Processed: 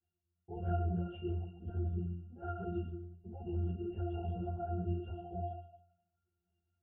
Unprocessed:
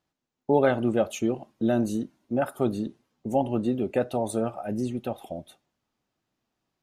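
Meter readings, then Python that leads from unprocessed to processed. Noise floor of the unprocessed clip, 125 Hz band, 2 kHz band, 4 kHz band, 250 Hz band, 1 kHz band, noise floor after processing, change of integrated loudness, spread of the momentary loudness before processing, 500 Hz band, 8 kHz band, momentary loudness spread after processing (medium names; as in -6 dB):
-84 dBFS, -1.5 dB, -21.0 dB, under -15 dB, -15.0 dB, -12.5 dB, under -85 dBFS, -12.5 dB, 13 LU, -17.5 dB, under -35 dB, 9 LU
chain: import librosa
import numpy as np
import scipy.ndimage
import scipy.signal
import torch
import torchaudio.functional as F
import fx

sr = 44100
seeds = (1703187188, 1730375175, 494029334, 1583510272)

p1 = fx.freq_compress(x, sr, knee_hz=2600.0, ratio=1.5)
p2 = fx.highpass(p1, sr, hz=56.0, slope=6)
p3 = p2 * np.sin(2.0 * np.pi * 23.0 * np.arange(len(p2)) / sr)
p4 = fx.over_compress(p3, sr, threshold_db=-39.0, ratio=-1.0)
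p5 = p3 + (p4 * librosa.db_to_amplitude(1.5))
p6 = fx.echo_feedback(p5, sr, ms=138, feedback_pct=30, wet_db=-10)
p7 = fx.lpc_vocoder(p6, sr, seeds[0], excitation='pitch_kept', order=10)
p8 = fx.octave_resonator(p7, sr, note='F', decay_s=0.73)
p9 = fx.ensemble(p8, sr)
y = p9 * librosa.db_to_amplitude(9.0)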